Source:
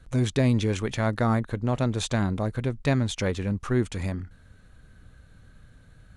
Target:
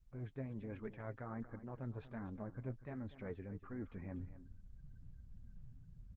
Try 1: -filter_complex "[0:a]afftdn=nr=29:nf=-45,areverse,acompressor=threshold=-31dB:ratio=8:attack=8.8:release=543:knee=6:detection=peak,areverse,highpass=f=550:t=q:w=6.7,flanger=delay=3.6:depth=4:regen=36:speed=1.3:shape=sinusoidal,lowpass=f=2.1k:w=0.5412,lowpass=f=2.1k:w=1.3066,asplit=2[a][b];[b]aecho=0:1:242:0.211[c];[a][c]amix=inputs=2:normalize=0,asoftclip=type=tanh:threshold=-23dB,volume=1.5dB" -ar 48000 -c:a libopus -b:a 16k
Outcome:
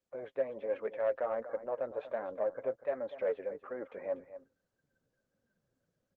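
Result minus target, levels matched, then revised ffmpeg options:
500 Hz band +7.0 dB; compressor: peak gain reduction -7 dB
-filter_complex "[0:a]afftdn=nr=29:nf=-45,areverse,acompressor=threshold=-39dB:ratio=8:attack=8.8:release=543:knee=6:detection=peak,areverse,flanger=delay=3.6:depth=4:regen=36:speed=1.3:shape=sinusoidal,lowpass=f=2.1k:w=0.5412,lowpass=f=2.1k:w=1.3066,asplit=2[a][b];[b]aecho=0:1:242:0.211[c];[a][c]amix=inputs=2:normalize=0,asoftclip=type=tanh:threshold=-23dB,volume=1.5dB" -ar 48000 -c:a libopus -b:a 16k

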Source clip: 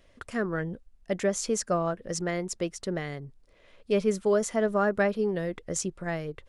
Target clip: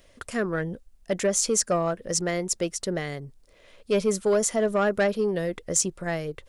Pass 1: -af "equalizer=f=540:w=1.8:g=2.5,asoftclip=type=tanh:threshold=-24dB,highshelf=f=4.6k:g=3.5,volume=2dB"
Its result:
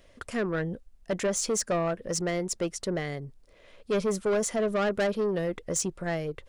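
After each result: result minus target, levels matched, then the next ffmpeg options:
soft clip: distortion +9 dB; 8000 Hz band -2.5 dB
-af "equalizer=f=540:w=1.8:g=2.5,asoftclip=type=tanh:threshold=-16.5dB,highshelf=f=4.6k:g=3.5,volume=2dB"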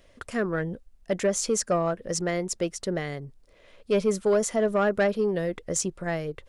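8000 Hz band -4.0 dB
-af "equalizer=f=540:w=1.8:g=2.5,asoftclip=type=tanh:threshold=-16.5dB,highshelf=f=4.6k:g=10.5,volume=2dB"

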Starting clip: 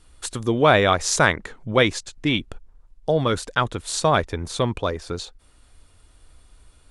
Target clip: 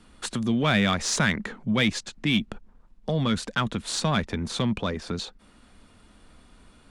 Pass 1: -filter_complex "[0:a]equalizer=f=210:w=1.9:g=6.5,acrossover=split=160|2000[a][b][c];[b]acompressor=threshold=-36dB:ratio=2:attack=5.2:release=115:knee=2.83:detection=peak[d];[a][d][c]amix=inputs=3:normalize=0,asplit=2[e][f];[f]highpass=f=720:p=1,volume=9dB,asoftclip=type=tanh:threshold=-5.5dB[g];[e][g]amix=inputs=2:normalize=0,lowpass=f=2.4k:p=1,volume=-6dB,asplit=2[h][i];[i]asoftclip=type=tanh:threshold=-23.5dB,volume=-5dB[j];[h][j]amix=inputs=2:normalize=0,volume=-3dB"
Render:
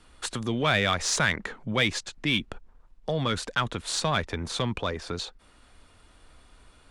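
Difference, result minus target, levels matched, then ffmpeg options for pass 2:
250 Hz band -5.0 dB
-filter_complex "[0:a]equalizer=f=210:w=1.9:g=18.5,acrossover=split=160|2000[a][b][c];[b]acompressor=threshold=-36dB:ratio=2:attack=5.2:release=115:knee=2.83:detection=peak[d];[a][d][c]amix=inputs=3:normalize=0,asplit=2[e][f];[f]highpass=f=720:p=1,volume=9dB,asoftclip=type=tanh:threshold=-5.5dB[g];[e][g]amix=inputs=2:normalize=0,lowpass=f=2.4k:p=1,volume=-6dB,asplit=2[h][i];[i]asoftclip=type=tanh:threshold=-23.5dB,volume=-5dB[j];[h][j]amix=inputs=2:normalize=0,volume=-3dB"

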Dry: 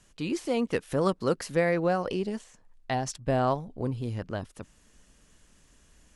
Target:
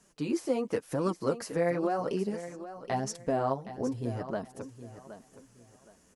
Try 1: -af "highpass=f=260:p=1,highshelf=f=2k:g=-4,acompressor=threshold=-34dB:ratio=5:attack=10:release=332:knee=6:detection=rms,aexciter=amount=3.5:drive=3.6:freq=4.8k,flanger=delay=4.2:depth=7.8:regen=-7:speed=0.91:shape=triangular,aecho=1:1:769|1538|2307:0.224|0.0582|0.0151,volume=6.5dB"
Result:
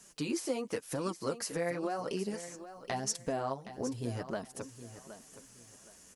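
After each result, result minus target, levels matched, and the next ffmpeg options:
4000 Hz band +8.5 dB; compressor: peak gain reduction +7 dB
-af "highpass=f=260:p=1,highshelf=f=2k:g=-14.5,acompressor=threshold=-34dB:ratio=5:attack=10:release=332:knee=6:detection=rms,aexciter=amount=3.5:drive=3.6:freq=4.8k,flanger=delay=4.2:depth=7.8:regen=-7:speed=0.91:shape=triangular,aecho=1:1:769|1538|2307:0.224|0.0582|0.0151,volume=6.5dB"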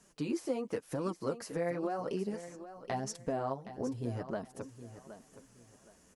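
compressor: peak gain reduction +6.5 dB
-af "highpass=f=260:p=1,highshelf=f=2k:g=-14.5,acompressor=threshold=-26dB:ratio=5:attack=10:release=332:knee=6:detection=rms,aexciter=amount=3.5:drive=3.6:freq=4.8k,flanger=delay=4.2:depth=7.8:regen=-7:speed=0.91:shape=triangular,aecho=1:1:769|1538|2307:0.224|0.0582|0.0151,volume=6.5dB"

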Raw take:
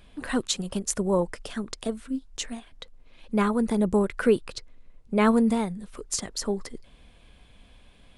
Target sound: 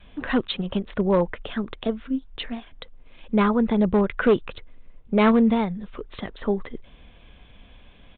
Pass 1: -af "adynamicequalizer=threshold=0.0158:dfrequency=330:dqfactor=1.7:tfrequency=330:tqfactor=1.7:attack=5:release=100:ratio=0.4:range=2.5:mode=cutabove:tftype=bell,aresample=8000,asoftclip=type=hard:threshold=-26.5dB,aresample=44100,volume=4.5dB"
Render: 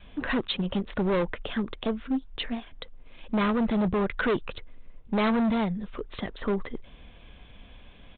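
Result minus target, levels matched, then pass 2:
hard clip: distortion +11 dB
-af "adynamicequalizer=threshold=0.0158:dfrequency=330:dqfactor=1.7:tfrequency=330:tqfactor=1.7:attack=5:release=100:ratio=0.4:range=2.5:mode=cutabove:tftype=bell,aresample=8000,asoftclip=type=hard:threshold=-16.5dB,aresample=44100,volume=4.5dB"

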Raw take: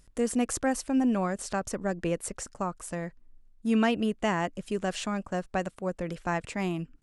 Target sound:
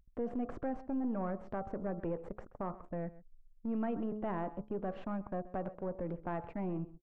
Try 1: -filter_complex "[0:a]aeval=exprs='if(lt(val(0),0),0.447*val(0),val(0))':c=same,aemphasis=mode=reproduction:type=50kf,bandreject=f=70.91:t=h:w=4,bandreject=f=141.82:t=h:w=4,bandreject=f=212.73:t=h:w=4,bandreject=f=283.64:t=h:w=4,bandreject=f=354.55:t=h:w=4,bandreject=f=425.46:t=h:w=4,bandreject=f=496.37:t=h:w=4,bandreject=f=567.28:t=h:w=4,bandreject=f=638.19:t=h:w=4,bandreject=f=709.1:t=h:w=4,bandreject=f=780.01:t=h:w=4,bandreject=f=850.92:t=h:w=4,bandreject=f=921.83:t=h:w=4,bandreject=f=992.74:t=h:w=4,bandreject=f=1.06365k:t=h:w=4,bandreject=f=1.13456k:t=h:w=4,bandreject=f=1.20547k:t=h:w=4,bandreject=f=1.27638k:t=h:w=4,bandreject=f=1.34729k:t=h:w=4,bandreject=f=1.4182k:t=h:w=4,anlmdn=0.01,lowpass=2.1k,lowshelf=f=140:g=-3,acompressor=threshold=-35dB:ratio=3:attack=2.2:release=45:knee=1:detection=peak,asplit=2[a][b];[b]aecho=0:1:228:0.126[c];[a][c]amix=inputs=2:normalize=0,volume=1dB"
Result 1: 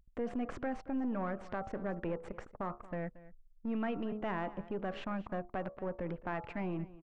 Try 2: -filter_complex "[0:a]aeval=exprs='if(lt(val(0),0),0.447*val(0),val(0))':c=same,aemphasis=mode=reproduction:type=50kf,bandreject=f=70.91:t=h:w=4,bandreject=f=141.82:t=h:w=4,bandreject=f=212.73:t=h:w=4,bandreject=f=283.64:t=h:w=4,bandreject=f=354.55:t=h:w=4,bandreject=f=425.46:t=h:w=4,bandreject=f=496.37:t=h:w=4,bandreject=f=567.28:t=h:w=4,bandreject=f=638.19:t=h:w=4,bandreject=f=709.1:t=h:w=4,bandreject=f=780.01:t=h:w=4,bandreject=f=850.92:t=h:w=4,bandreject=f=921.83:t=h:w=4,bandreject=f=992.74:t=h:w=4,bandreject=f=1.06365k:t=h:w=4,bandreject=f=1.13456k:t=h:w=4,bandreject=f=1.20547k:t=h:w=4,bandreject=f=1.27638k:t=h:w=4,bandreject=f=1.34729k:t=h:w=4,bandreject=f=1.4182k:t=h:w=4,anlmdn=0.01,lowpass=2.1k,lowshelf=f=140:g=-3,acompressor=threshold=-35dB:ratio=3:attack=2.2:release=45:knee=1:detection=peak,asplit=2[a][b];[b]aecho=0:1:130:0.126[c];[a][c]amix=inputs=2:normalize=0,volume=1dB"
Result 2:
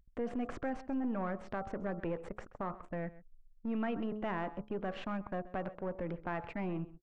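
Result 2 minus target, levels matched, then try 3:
2000 Hz band +7.0 dB
-filter_complex "[0:a]aeval=exprs='if(lt(val(0),0),0.447*val(0),val(0))':c=same,aemphasis=mode=reproduction:type=50kf,bandreject=f=70.91:t=h:w=4,bandreject=f=141.82:t=h:w=4,bandreject=f=212.73:t=h:w=4,bandreject=f=283.64:t=h:w=4,bandreject=f=354.55:t=h:w=4,bandreject=f=425.46:t=h:w=4,bandreject=f=496.37:t=h:w=4,bandreject=f=567.28:t=h:w=4,bandreject=f=638.19:t=h:w=4,bandreject=f=709.1:t=h:w=4,bandreject=f=780.01:t=h:w=4,bandreject=f=850.92:t=h:w=4,bandreject=f=921.83:t=h:w=4,bandreject=f=992.74:t=h:w=4,bandreject=f=1.06365k:t=h:w=4,bandreject=f=1.13456k:t=h:w=4,bandreject=f=1.20547k:t=h:w=4,bandreject=f=1.27638k:t=h:w=4,bandreject=f=1.34729k:t=h:w=4,bandreject=f=1.4182k:t=h:w=4,anlmdn=0.01,lowpass=990,lowshelf=f=140:g=-3,acompressor=threshold=-35dB:ratio=3:attack=2.2:release=45:knee=1:detection=peak,asplit=2[a][b];[b]aecho=0:1:130:0.126[c];[a][c]amix=inputs=2:normalize=0,volume=1dB"

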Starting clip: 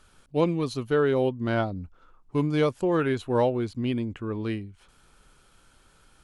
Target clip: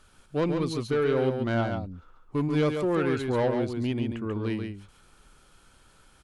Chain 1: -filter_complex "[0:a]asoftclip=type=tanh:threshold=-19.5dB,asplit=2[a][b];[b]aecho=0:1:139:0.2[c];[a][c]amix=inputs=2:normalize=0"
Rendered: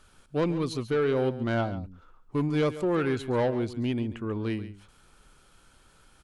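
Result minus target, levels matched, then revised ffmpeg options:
echo-to-direct -8.5 dB
-filter_complex "[0:a]asoftclip=type=tanh:threshold=-19.5dB,asplit=2[a][b];[b]aecho=0:1:139:0.531[c];[a][c]amix=inputs=2:normalize=0"

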